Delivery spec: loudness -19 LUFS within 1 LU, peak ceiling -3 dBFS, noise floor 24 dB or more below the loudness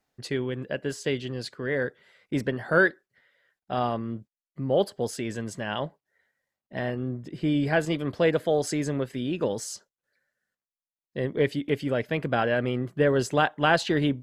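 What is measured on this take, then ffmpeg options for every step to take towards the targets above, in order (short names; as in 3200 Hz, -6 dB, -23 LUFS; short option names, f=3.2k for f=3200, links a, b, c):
loudness -27.5 LUFS; peak -7.5 dBFS; loudness target -19.0 LUFS
-> -af "volume=8.5dB,alimiter=limit=-3dB:level=0:latency=1"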